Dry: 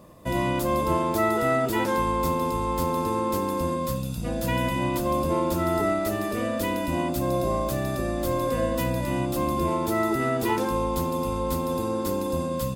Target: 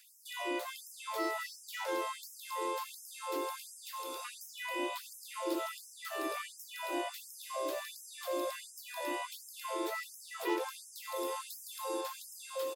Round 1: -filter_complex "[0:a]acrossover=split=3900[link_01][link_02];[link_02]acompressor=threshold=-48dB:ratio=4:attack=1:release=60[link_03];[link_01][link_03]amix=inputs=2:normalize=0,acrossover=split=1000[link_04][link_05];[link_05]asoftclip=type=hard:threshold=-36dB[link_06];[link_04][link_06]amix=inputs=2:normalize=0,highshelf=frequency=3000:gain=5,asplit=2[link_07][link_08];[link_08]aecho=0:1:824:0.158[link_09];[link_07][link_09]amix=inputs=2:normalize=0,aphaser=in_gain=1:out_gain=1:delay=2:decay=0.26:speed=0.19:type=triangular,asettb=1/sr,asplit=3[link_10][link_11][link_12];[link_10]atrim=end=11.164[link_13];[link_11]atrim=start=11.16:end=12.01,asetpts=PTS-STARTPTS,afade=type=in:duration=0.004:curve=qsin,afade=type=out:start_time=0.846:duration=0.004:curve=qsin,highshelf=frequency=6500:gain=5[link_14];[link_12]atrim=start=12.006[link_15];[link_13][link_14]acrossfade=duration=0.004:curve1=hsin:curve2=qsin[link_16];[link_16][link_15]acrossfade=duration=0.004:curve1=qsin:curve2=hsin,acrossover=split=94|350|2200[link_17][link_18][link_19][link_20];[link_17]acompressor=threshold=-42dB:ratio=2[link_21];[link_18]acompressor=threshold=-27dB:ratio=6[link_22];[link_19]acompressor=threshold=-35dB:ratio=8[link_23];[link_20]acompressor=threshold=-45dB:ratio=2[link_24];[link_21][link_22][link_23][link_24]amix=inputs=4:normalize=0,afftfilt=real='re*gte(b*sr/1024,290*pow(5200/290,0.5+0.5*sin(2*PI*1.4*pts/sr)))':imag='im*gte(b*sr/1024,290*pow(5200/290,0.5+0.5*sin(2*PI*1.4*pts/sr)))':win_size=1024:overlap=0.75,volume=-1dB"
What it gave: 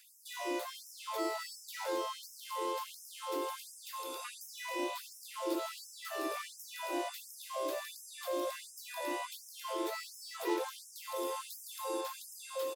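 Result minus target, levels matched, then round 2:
hard clipping: distortion +12 dB
-filter_complex "[0:a]acrossover=split=3900[link_01][link_02];[link_02]acompressor=threshold=-48dB:ratio=4:attack=1:release=60[link_03];[link_01][link_03]amix=inputs=2:normalize=0,acrossover=split=1000[link_04][link_05];[link_05]asoftclip=type=hard:threshold=-27dB[link_06];[link_04][link_06]amix=inputs=2:normalize=0,highshelf=frequency=3000:gain=5,asplit=2[link_07][link_08];[link_08]aecho=0:1:824:0.158[link_09];[link_07][link_09]amix=inputs=2:normalize=0,aphaser=in_gain=1:out_gain=1:delay=2:decay=0.26:speed=0.19:type=triangular,asettb=1/sr,asplit=3[link_10][link_11][link_12];[link_10]atrim=end=11.164[link_13];[link_11]atrim=start=11.16:end=12.01,asetpts=PTS-STARTPTS,afade=type=in:duration=0.004:curve=qsin,afade=type=out:start_time=0.846:duration=0.004:curve=qsin,highshelf=frequency=6500:gain=5[link_14];[link_12]atrim=start=12.006[link_15];[link_13][link_14]acrossfade=duration=0.004:curve1=hsin:curve2=qsin[link_16];[link_16][link_15]acrossfade=duration=0.004:curve1=qsin:curve2=hsin,acrossover=split=94|350|2200[link_17][link_18][link_19][link_20];[link_17]acompressor=threshold=-42dB:ratio=2[link_21];[link_18]acompressor=threshold=-27dB:ratio=6[link_22];[link_19]acompressor=threshold=-35dB:ratio=8[link_23];[link_20]acompressor=threshold=-45dB:ratio=2[link_24];[link_21][link_22][link_23][link_24]amix=inputs=4:normalize=0,afftfilt=real='re*gte(b*sr/1024,290*pow(5200/290,0.5+0.5*sin(2*PI*1.4*pts/sr)))':imag='im*gte(b*sr/1024,290*pow(5200/290,0.5+0.5*sin(2*PI*1.4*pts/sr)))':win_size=1024:overlap=0.75,volume=-1dB"

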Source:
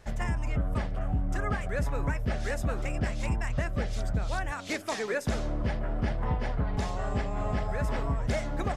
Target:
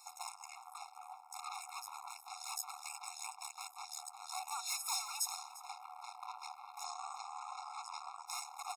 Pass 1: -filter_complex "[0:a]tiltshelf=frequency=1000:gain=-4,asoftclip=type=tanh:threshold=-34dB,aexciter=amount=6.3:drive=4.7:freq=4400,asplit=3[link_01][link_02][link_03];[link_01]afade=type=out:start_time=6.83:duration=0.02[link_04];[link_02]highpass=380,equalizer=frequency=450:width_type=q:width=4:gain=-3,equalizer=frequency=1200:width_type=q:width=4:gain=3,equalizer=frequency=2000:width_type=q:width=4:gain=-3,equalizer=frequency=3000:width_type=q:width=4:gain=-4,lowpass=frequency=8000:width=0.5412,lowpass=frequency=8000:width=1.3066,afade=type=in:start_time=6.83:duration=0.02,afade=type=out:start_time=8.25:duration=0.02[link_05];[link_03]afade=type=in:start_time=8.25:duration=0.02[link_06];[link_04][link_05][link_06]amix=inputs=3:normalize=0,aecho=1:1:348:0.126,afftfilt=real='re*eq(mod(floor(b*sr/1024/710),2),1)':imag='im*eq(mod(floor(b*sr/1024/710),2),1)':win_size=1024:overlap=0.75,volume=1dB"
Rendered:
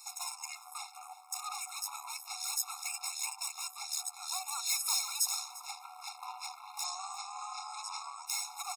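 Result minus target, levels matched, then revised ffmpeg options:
1,000 Hz band −5.5 dB
-filter_complex "[0:a]tiltshelf=frequency=1000:gain=3.5,asoftclip=type=tanh:threshold=-34dB,aexciter=amount=6.3:drive=4.7:freq=4400,asplit=3[link_01][link_02][link_03];[link_01]afade=type=out:start_time=6.83:duration=0.02[link_04];[link_02]highpass=380,equalizer=frequency=450:width_type=q:width=4:gain=-3,equalizer=frequency=1200:width_type=q:width=4:gain=3,equalizer=frequency=2000:width_type=q:width=4:gain=-3,equalizer=frequency=3000:width_type=q:width=4:gain=-4,lowpass=frequency=8000:width=0.5412,lowpass=frequency=8000:width=1.3066,afade=type=in:start_time=6.83:duration=0.02,afade=type=out:start_time=8.25:duration=0.02[link_05];[link_03]afade=type=in:start_time=8.25:duration=0.02[link_06];[link_04][link_05][link_06]amix=inputs=3:normalize=0,aecho=1:1:348:0.126,afftfilt=real='re*eq(mod(floor(b*sr/1024/710),2),1)':imag='im*eq(mod(floor(b*sr/1024/710),2),1)':win_size=1024:overlap=0.75,volume=1dB"

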